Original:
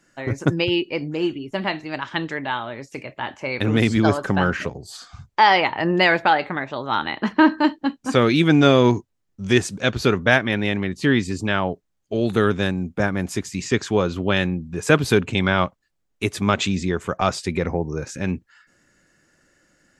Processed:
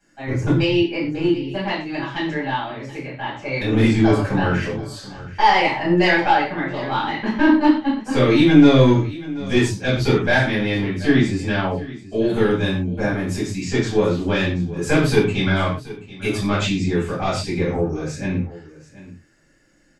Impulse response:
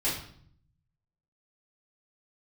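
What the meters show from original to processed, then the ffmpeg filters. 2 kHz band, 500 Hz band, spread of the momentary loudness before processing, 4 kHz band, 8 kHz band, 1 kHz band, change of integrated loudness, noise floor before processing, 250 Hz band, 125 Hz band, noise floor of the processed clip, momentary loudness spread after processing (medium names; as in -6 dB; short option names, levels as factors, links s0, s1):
-0.5 dB, +1.0 dB, 12 LU, -0.5 dB, -1.5 dB, 0.0 dB, +1.5 dB, -71 dBFS, +3.0 dB, +3.0 dB, -49 dBFS, 12 LU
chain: -filter_complex "[0:a]aeval=exprs='(tanh(2*val(0)+0.25)-tanh(0.25))/2':c=same,aecho=1:1:731:0.133[s0];[1:a]atrim=start_sample=2205,atrim=end_sample=6174[s1];[s0][s1]afir=irnorm=-1:irlink=0,volume=0.447"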